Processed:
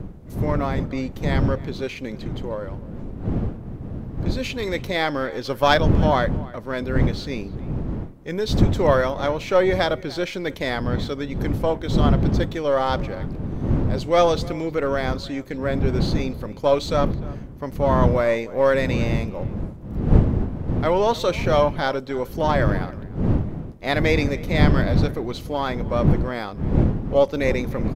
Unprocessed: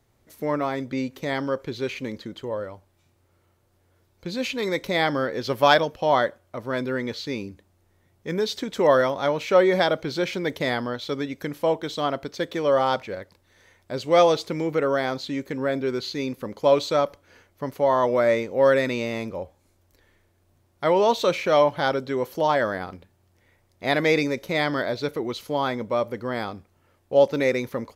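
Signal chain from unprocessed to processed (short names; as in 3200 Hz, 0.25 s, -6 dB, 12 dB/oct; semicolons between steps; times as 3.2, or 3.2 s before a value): half-wave gain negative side -3 dB; wind noise 180 Hz -25 dBFS; speakerphone echo 0.3 s, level -20 dB; gain +1 dB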